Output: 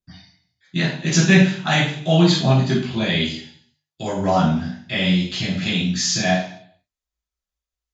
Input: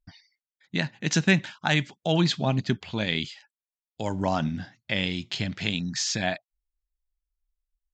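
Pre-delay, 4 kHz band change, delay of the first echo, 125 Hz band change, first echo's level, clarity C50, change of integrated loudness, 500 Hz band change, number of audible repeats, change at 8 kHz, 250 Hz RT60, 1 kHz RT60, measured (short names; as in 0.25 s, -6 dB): 3 ms, +6.5 dB, none, +9.0 dB, none, 2.5 dB, +8.0 dB, +8.0 dB, none, +7.5 dB, 0.60 s, 0.55 s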